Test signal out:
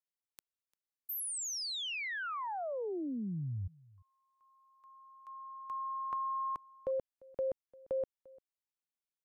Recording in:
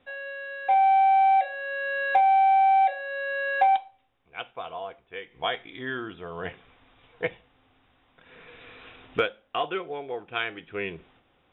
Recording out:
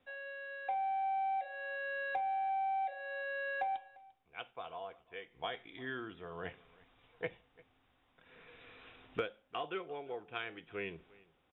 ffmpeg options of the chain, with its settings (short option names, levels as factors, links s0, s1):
-filter_complex "[0:a]acrossover=split=440[s0][s1];[s1]acompressor=threshold=0.0447:ratio=6[s2];[s0][s2]amix=inputs=2:normalize=0,aecho=1:1:347:0.0708,volume=0.355"